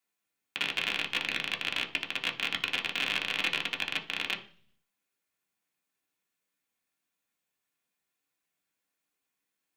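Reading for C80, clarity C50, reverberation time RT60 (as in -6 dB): 18.5 dB, 13.5 dB, 0.45 s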